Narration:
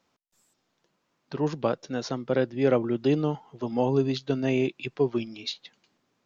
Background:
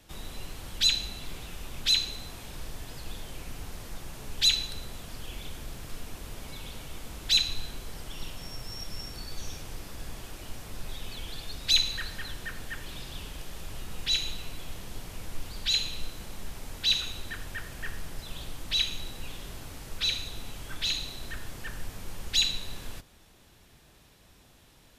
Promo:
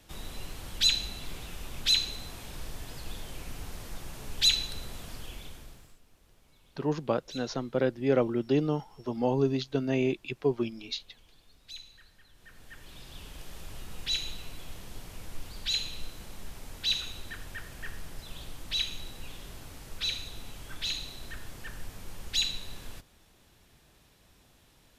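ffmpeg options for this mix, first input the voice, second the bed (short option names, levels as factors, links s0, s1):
-filter_complex "[0:a]adelay=5450,volume=0.75[s0];[1:a]volume=7.94,afade=t=out:st=5.08:d=0.89:silence=0.0841395,afade=t=in:st=12.32:d=1.19:silence=0.11885[s1];[s0][s1]amix=inputs=2:normalize=0"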